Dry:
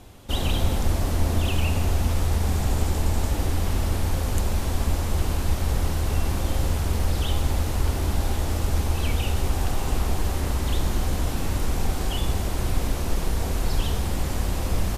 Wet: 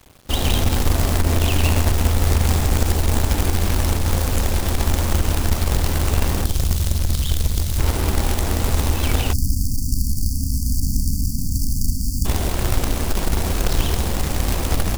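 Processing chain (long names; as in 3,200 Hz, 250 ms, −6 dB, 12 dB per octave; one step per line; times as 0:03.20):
0:06.44–0:07.79: inverse Chebyshev band-stop filter 350–1,900 Hz, stop band 40 dB
feedback echo with a band-pass in the loop 99 ms, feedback 48%, band-pass 300 Hz, level −5 dB
log-companded quantiser 4 bits
dead-zone distortion −43 dBFS
0:09.33–0:12.25: time-frequency box erased 290–4,400 Hz
saturating transformer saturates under 52 Hz
level +5 dB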